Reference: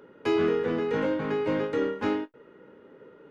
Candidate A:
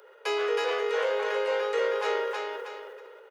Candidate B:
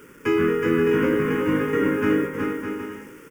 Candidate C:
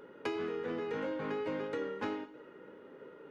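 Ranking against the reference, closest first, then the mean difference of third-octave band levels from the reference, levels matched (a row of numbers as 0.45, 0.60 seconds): C, B, A; 4.0, 8.0, 12.0 decibels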